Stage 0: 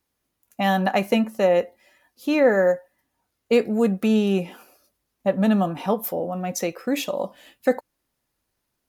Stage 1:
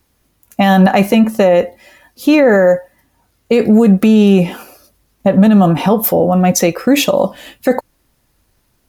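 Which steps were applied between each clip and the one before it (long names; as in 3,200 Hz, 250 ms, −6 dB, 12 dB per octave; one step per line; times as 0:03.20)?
low-shelf EQ 150 Hz +9.5 dB
boost into a limiter +15.5 dB
level −1 dB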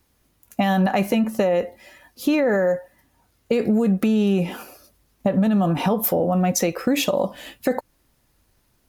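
downward compressor 3 to 1, threshold −14 dBFS, peak gain reduction 7 dB
level −4 dB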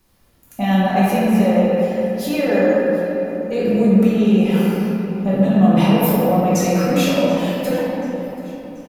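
brickwall limiter −17.5 dBFS, peak gain reduction 9.5 dB
repeating echo 733 ms, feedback 50%, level −20 dB
rectangular room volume 160 cubic metres, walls hard, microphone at 1.1 metres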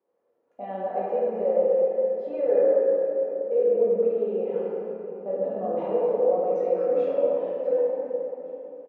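four-pole ladder band-pass 520 Hz, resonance 70%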